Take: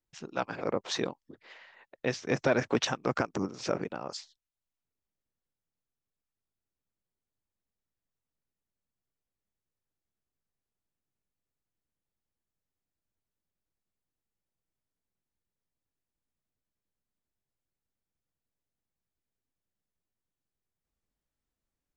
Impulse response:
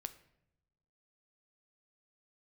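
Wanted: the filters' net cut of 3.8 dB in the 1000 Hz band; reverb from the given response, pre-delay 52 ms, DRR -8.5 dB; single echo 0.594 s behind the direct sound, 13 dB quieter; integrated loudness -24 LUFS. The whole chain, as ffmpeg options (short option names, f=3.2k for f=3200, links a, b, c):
-filter_complex "[0:a]equalizer=f=1k:t=o:g=-5.5,aecho=1:1:594:0.224,asplit=2[a][b];[1:a]atrim=start_sample=2205,adelay=52[c];[b][c]afir=irnorm=-1:irlink=0,volume=12dB[d];[a][d]amix=inputs=2:normalize=0"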